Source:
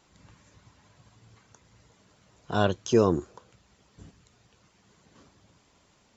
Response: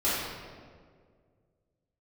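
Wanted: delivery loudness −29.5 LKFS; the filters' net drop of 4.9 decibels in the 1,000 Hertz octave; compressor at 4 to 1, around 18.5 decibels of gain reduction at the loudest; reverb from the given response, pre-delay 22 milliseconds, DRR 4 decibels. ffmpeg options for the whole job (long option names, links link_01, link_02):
-filter_complex "[0:a]equalizer=frequency=1000:width_type=o:gain=-7,acompressor=threshold=-39dB:ratio=4,asplit=2[link_01][link_02];[1:a]atrim=start_sample=2205,adelay=22[link_03];[link_02][link_03]afir=irnorm=-1:irlink=0,volume=-16dB[link_04];[link_01][link_04]amix=inputs=2:normalize=0,volume=15dB"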